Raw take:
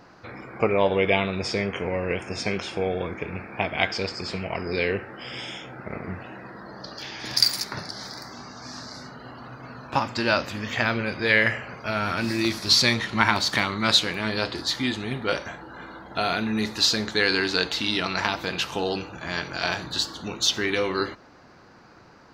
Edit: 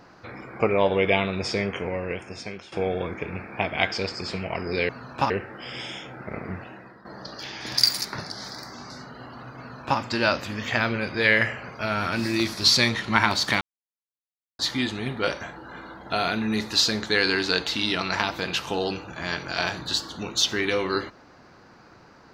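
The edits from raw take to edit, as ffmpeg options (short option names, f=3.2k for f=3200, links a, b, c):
-filter_complex "[0:a]asplit=8[a][b][c][d][e][f][g][h];[a]atrim=end=2.72,asetpts=PTS-STARTPTS,afade=t=out:st=1.67:d=1.05:silence=0.177828[i];[b]atrim=start=2.72:end=4.892,asetpts=PTS-STARTPTS,afade=t=in:d=0.004:c=hsin:silence=0.177828[j];[c]atrim=start=9.628:end=10.042[k];[d]atrim=start=4.888:end=6.64,asetpts=PTS-STARTPTS,afade=t=out:st=1.272:d=0.48:silence=0.251189[l];[e]atrim=start=6.64:end=8.492,asetpts=PTS-STARTPTS,afade=t=in:d=0.004:c=hsin:silence=0.251189[m];[f]atrim=start=8.948:end=13.66,asetpts=PTS-STARTPTS,afade=t=out:st=4.708:d=0.004:c=hsin[n];[g]atrim=start=13.66:end=14.64,asetpts=PTS-STARTPTS,volume=0[o];[h]atrim=start=14.64,asetpts=PTS-STARTPTS,afade=t=in:d=0.004:c=hsin[p];[i][j]concat=n=2:v=0:a=1[q];[q][k]acrossfade=d=0.004:c1=hsin:c2=hsin[r];[l][m]concat=n=2:v=0:a=1[s];[r][s]acrossfade=d=0.004:c1=hsin:c2=hsin[t];[n][o][p]concat=n=3:v=0:a=1[u];[t][u]acrossfade=d=0.004:c1=hsin:c2=hsin"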